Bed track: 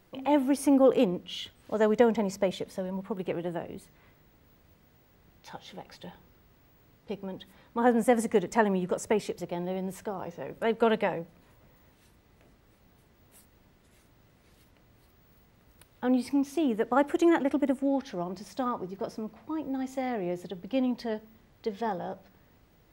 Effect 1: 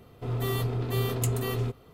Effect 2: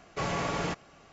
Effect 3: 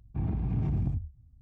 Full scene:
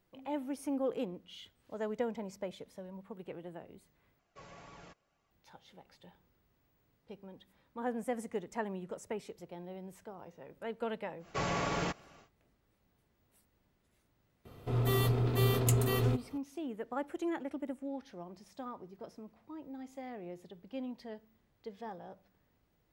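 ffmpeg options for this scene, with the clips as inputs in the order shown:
-filter_complex "[2:a]asplit=2[s0][s1];[0:a]volume=0.224[s2];[s0]flanger=delay=0.8:depth=1.3:regen=61:speed=1.9:shape=triangular[s3];[s2]asplit=2[s4][s5];[s4]atrim=end=4.194[s6];[s3]atrim=end=1.12,asetpts=PTS-STARTPTS,volume=0.126[s7];[s5]atrim=start=5.306[s8];[s1]atrim=end=1.12,asetpts=PTS-STARTPTS,volume=0.75,afade=t=in:d=0.1,afade=t=out:st=1.02:d=0.1,adelay=11180[s9];[1:a]atrim=end=1.93,asetpts=PTS-STARTPTS,volume=0.944,afade=t=in:d=0.004:c=hsin,afade=t=out:st=1.926:d=0.004:c=hsin,adelay=14450[s10];[s6][s7]acrossfade=d=0.004:c1=hsin:c2=hsin[s11];[s11][s8]acrossfade=d=0.004:c1=hsin:c2=hsin[s12];[s12][s9][s10]amix=inputs=3:normalize=0"

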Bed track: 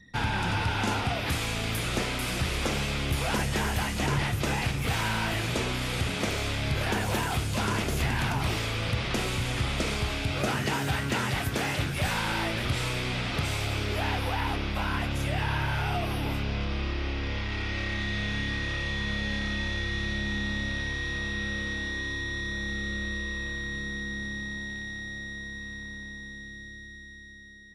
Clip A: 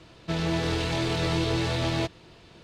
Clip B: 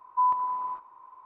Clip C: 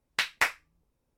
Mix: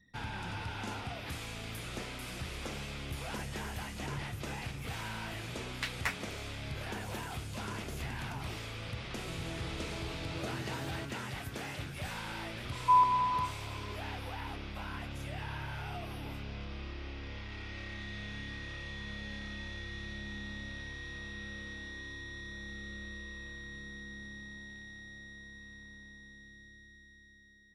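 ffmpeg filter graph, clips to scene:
-filter_complex "[0:a]volume=0.251[s0];[3:a]atrim=end=1.17,asetpts=PTS-STARTPTS,volume=0.335,afade=t=in:d=0.004:c=hsin,afade=t=out:st=1.166:d=0.004:c=hsin,adelay=5640[s1];[1:a]atrim=end=2.63,asetpts=PTS-STARTPTS,volume=0.15,afade=t=in:d=0.004:c=hsin,afade=t=out:st=2.626:d=0.004:c=hsin,adelay=8990[s2];[2:a]atrim=end=1.25,asetpts=PTS-STARTPTS,afade=t=in:d=0.004:c=hsin,afade=t=out:st=1.246:d=0.004:c=hsin,adelay=12710[s3];[s0][s1][s2][s3]amix=inputs=4:normalize=0"

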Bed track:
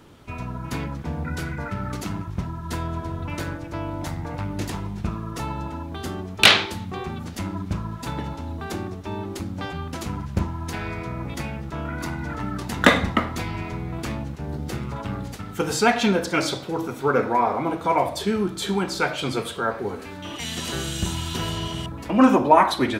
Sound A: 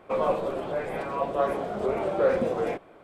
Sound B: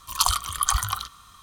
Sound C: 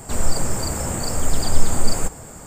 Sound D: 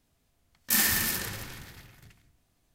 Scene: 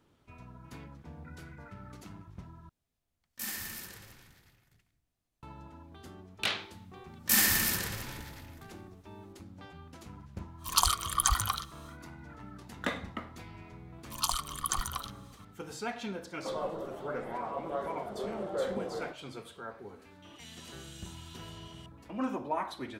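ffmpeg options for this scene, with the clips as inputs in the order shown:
-filter_complex "[4:a]asplit=2[s0][s1];[2:a]asplit=2[s2][s3];[0:a]volume=0.119[s4];[s3]afreqshift=-26[s5];[1:a]asuperstop=centerf=2400:order=4:qfactor=6.1[s6];[s4]asplit=2[s7][s8];[s7]atrim=end=2.694[s9];[s0]atrim=end=2.74,asetpts=PTS-STARTPTS,volume=0.2[s10];[s8]atrim=start=5.426[s11];[s1]atrim=end=2.74,asetpts=PTS-STARTPTS,volume=0.944,afade=t=in:d=0.004:c=hsin,afade=t=out:st=2.736:d=0.004:c=hsin,adelay=6590[s12];[s2]atrim=end=1.42,asetpts=PTS-STARTPTS,volume=0.631,afade=t=in:d=0.1,afade=t=out:st=1.32:d=0.1,adelay=10570[s13];[s5]atrim=end=1.42,asetpts=PTS-STARTPTS,volume=0.335,afade=t=in:d=0.004:c=hsin,afade=t=out:st=1.416:d=0.004:c=hsin,adelay=14030[s14];[s6]atrim=end=3.03,asetpts=PTS-STARTPTS,volume=0.299,afade=t=in:d=0.004:c=hsin,afade=t=out:st=3.026:d=0.004:c=hsin,adelay=16350[s15];[s9][s10]acrossfade=d=0.004:c1=hsin:c2=hsin[s16];[s16][s11]acrossfade=d=0.004:c1=hsin:c2=hsin[s17];[s17][s12][s13][s14][s15]amix=inputs=5:normalize=0"

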